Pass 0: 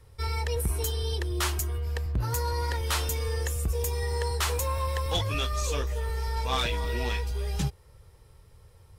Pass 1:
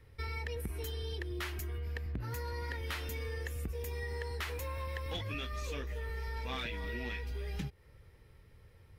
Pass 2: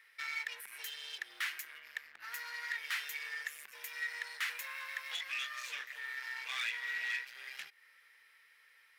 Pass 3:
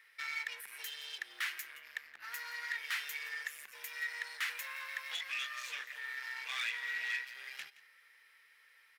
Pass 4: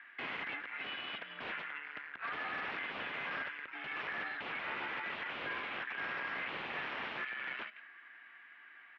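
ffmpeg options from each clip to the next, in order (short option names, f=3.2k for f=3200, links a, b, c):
-af "equalizer=f=250:t=o:w=1:g=8,equalizer=f=1k:t=o:w=1:g=-4,equalizer=f=2k:t=o:w=1:g=9,equalizer=f=8k:t=o:w=1:g=-9,acompressor=threshold=-30dB:ratio=6,volume=-5.5dB"
-af "asoftclip=type=hard:threshold=-38dB,highpass=f=1.8k:t=q:w=2.3,volume=3dB"
-af "aecho=1:1:171:0.126"
-af "aeval=exprs='(mod(84.1*val(0)+1,2)-1)/84.1':c=same,highpass=f=350:t=q:w=0.5412,highpass=f=350:t=q:w=1.307,lowpass=f=3.1k:t=q:w=0.5176,lowpass=f=3.1k:t=q:w=0.7071,lowpass=f=3.1k:t=q:w=1.932,afreqshift=-180,volume=8.5dB"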